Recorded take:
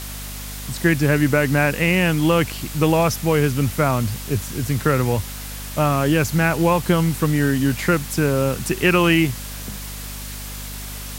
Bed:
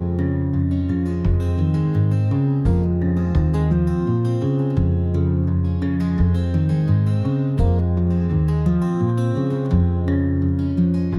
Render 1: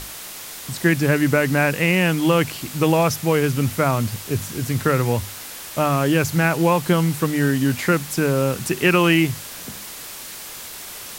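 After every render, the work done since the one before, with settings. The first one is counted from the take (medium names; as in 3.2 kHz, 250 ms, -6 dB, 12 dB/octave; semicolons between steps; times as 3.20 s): hum notches 50/100/150/200/250 Hz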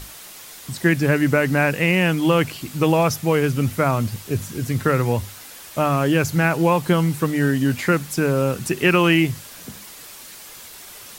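noise reduction 6 dB, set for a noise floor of -36 dBFS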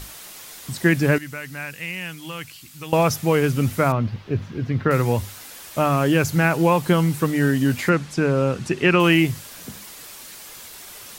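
1.18–2.93 s: amplifier tone stack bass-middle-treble 5-5-5; 3.92–4.91 s: distance through air 270 m; 7.89–9.00 s: distance through air 78 m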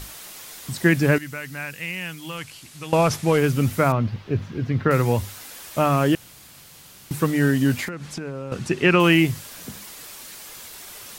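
2.37–3.38 s: CVSD coder 64 kbps; 6.15–7.11 s: room tone; 7.84–8.52 s: compression 12:1, threshold -27 dBFS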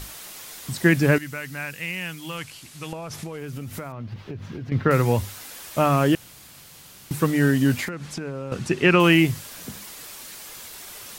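2.90–4.72 s: compression 20:1, threshold -29 dBFS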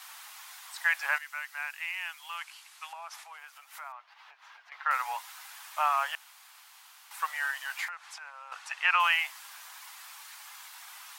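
steep high-pass 810 Hz 48 dB/octave; treble shelf 2.6 kHz -10.5 dB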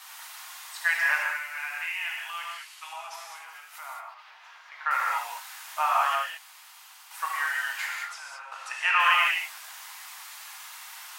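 gated-style reverb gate 240 ms flat, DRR -2.5 dB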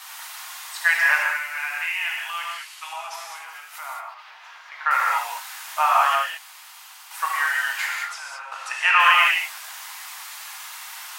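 trim +6 dB; peak limiter -3 dBFS, peak gain reduction 1.5 dB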